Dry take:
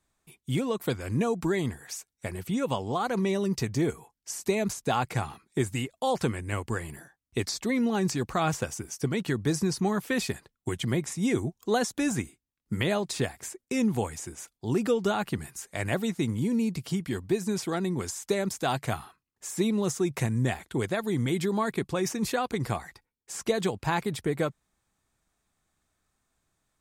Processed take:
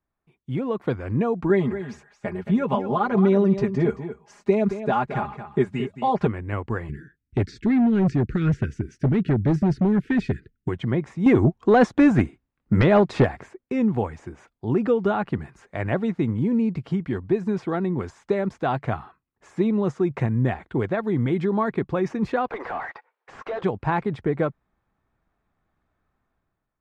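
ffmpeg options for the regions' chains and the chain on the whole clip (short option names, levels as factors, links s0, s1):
-filter_complex "[0:a]asettb=1/sr,asplit=3[s0][s1][s2];[s0]atrim=end=1.494[s3];[s1]atrim=start=1.49:end=6.27,asetpts=PTS-STARTPTS,afade=t=in:d=0.004:c=qsin,afade=t=out:st=4.776:d=0.004:c=qsin,aecho=1:1:4.9:0.98,atrim=end_sample=210798,aecho=1:1:222:0.282,atrim=end_sample=210798[s4];[s2]atrim=start=6.266[s5];[s3][s4]acrossfade=d=0.004:c1=hsin:c2=qsin[s6];[s6][s5]acrossfade=d=0.004:c1=qsin:c2=hsin,asettb=1/sr,asplit=3[s7][s8][s9];[s7]atrim=end=6.894[s10];[s8]atrim=start=6.89:end=10.68,asetpts=PTS-STARTPTS,afade=t=in:d=0.004:c=qsin,afade=t=out:st=3.786:d=0.004:c=qsin,asuperstop=centerf=800:order=12:qfactor=0.8,lowshelf=f=280:g=8.5,asoftclip=type=hard:threshold=0.0944[s11];[s9]atrim=start=10.676[s12];[s10][s11]acrossfade=d=0.004:c1=hsin:c2=qsin[s13];[s13][s12]acrossfade=d=0.004:c1=qsin:c2=hsin,asettb=1/sr,asplit=3[s14][s15][s16];[s14]atrim=end=11.264[s17];[s15]atrim=start=11.26:end=13.43,asetpts=PTS-STARTPTS,afade=t=in:d=0.004:c=qsin,afade=t=out:st=2.166:d=0.004:c=qsin,tremolo=f=5.2:d=0.42,aeval=exprs='0.211*sin(PI/2*2.24*val(0)/0.211)':c=same[s18];[s16]atrim=start=13.426[s19];[s17][s18]acrossfade=d=0.004:c1=hsin:c2=qsin[s20];[s20][s19]acrossfade=d=0.004:c1=qsin:c2=hsin,asettb=1/sr,asplit=3[s21][s22][s23];[s21]atrim=end=22.484[s24];[s22]atrim=start=22.48:end=23.64,asetpts=PTS-STARTPTS,afade=t=in:d=0.004:c=qsin,afade=t=out:st=1.156:d=0.004:c=qsin,highpass=f=500:w=0.5412,highpass=f=500:w=1.3066,acompressor=threshold=0.0141:ratio=5:attack=3.2:release=140:knee=1:detection=peak,asplit=2[s25][s26];[s26]highpass=f=720:p=1,volume=22.4,asoftclip=type=tanh:threshold=0.0631[s27];[s25][s27]amix=inputs=2:normalize=0,lowpass=f=1500:p=1,volume=0.501[s28];[s23]atrim=start=23.636[s29];[s24][s28]acrossfade=d=0.004:c1=hsin:c2=qsin[s30];[s30][s29]acrossfade=d=0.004:c1=qsin:c2=hsin,lowpass=1700,dynaudnorm=f=160:g=7:m=3.35,volume=0.531"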